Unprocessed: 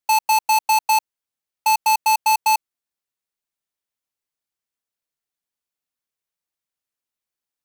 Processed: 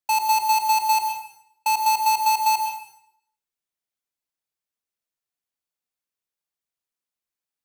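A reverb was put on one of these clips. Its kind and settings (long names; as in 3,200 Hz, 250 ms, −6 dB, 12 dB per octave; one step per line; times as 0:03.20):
dense smooth reverb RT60 0.69 s, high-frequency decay 0.95×, pre-delay 90 ms, DRR 4 dB
level −4 dB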